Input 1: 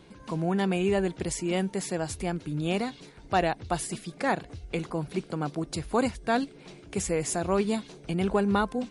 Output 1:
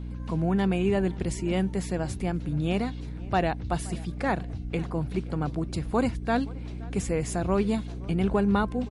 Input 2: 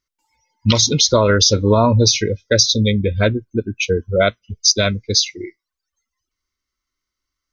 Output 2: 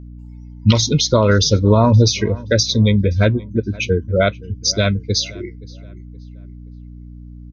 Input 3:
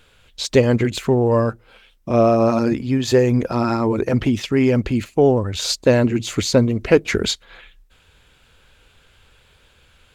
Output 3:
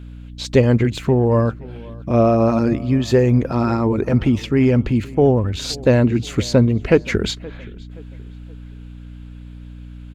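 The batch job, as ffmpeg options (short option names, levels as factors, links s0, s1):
-filter_complex "[0:a]bass=f=250:g=5,treble=f=4000:g=-5,aeval=exprs='val(0)+0.0224*(sin(2*PI*60*n/s)+sin(2*PI*2*60*n/s)/2+sin(2*PI*3*60*n/s)/3+sin(2*PI*4*60*n/s)/4+sin(2*PI*5*60*n/s)/5)':c=same,asplit=2[s0][s1];[s1]adelay=523,lowpass=f=2800:p=1,volume=0.0841,asplit=2[s2][s3];[s3]adelay=523,lowpass=f=2800:p=1,volume=0.41,asplit=2[s4][s5];[s5]adelay=523,lowpass=f=2800:p=1,volume=0.41[s6];[s2][s4][s6]amix=inputs=3:normalize=0[s7];[s0][s7]amix=inputs=2:normalize=0,volume=0.891"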